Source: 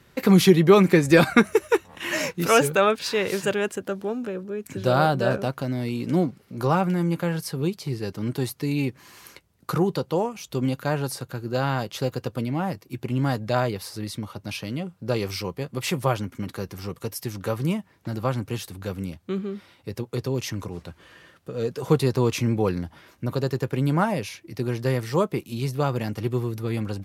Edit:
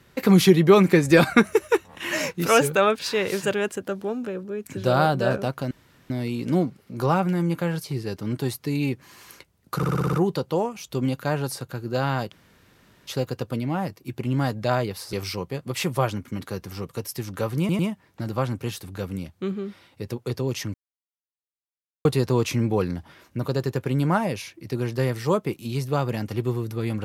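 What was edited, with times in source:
5.71 s: insert room tone 0.39 s
7.45–7.80 s: delete
9.73 s: stutter 0.06 s, 7 plays
11.92 s: insert room tone 0.75 s
13.98–15.20 s: delete
17.66 s: stutter 0.10 s, 3 plays
20.61–21.92 s: mute

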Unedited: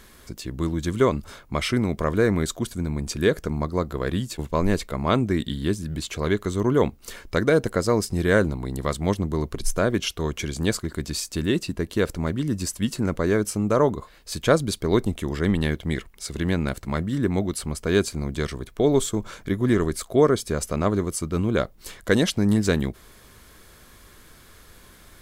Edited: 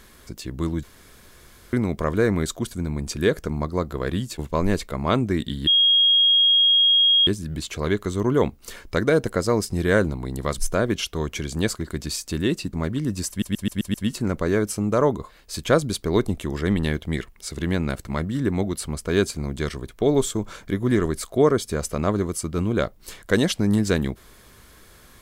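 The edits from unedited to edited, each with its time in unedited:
0.83–1.73 s: room tone
5.67 s: add tone 3.27 kHz -13.5 dBFS 1.60 s
8.98–9.62 s: delete
11.77–12.16 s: delete
12.72 s: stutter 0.13 s, 6 plays

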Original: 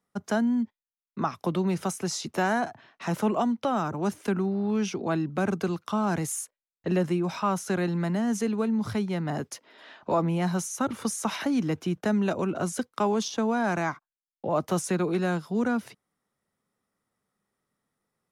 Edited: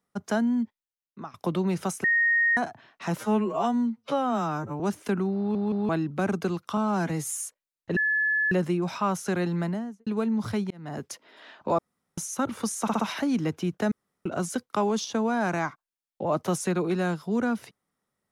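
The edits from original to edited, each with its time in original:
0.62–1.34 s: fade out, to -16 dB
2.04–2.57 s: bleep 1.86 kHz -19 dBFS
3.18–3.99 s: stretch 2×
4.57 s: stutter in place 0.17 s, 3 plays
5.96–6.41 s: stretch 1.5×
6.93 s: add tone 1.72 kHz -21.5 dBFS 0.55 s
7.99–8.48 s: studio fade out
9.12–9.51 s: fade in
10.20–10.59 s: room tone
11.23 s: stutter 0.06 s, 4 plays
12.15–12.49 s: room tone

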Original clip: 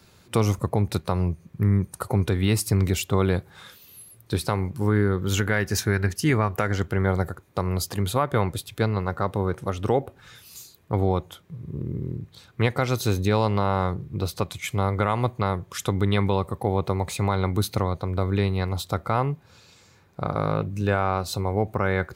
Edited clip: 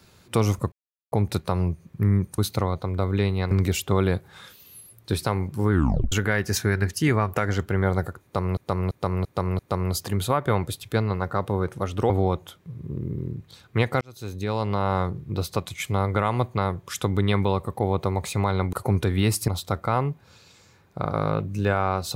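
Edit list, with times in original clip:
0.72 s: insert silence 0.40 s
1.98–2.73 s: swap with 17.57–18.70 s
4.93 s: tape stop 0.41 s
7.45–7.79 s: loop, 5 plays
9.96–10.94 s: delete
12.85–13.78 s: fade in

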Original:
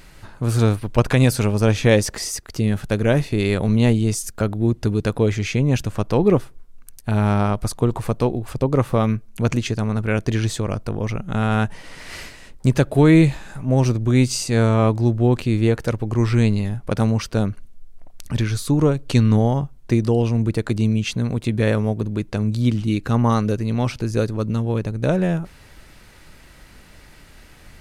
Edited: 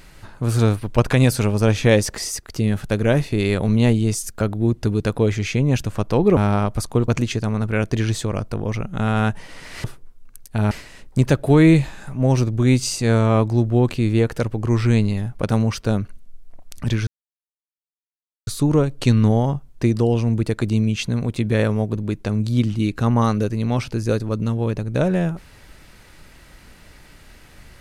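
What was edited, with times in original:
6.37–7.24 s: move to 12.19 s
7.95–9.43 s: delete
18.55 s: insert silence 1.40 s

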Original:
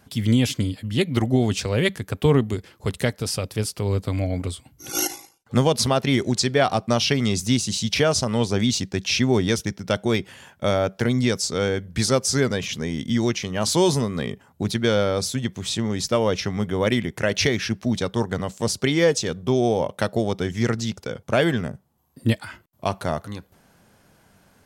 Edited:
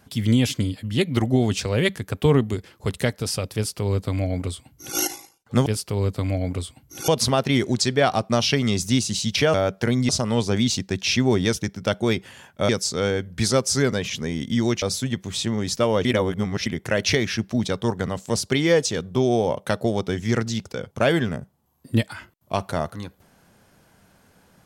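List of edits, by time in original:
3.55–4.97 s: copy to 5.66 s
10.72–11.27 s: move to 8.12 s
13.40–15.14 s: delete
16.37–16.98 s: reverse

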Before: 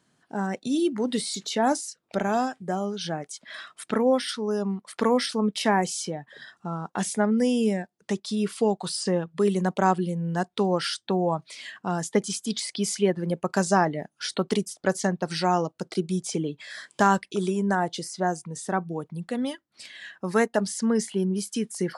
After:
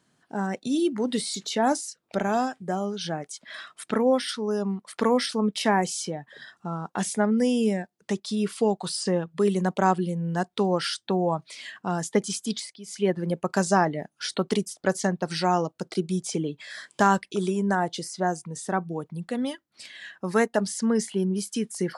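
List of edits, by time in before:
12.51–13.10 s: dip -16 dB, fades 0.24 s

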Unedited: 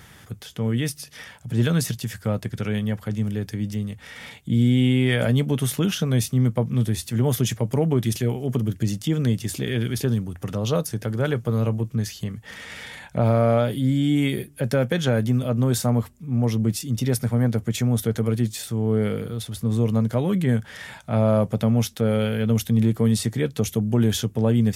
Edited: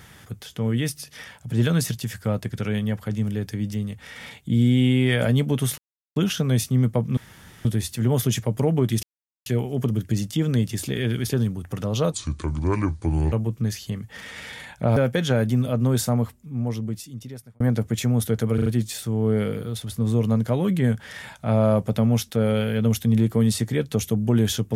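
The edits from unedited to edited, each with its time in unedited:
5.78 s: insert silence 0.38 s
6.79 s: insert room tone 0.48 s
8.17 s: insert silence 0.43 s
10.83–11.66 s: speed 69%
13.30–14.73 s: delete
15.74–17.37 s: fade out
18.31 s: stutter 0.04 s, 4 plays

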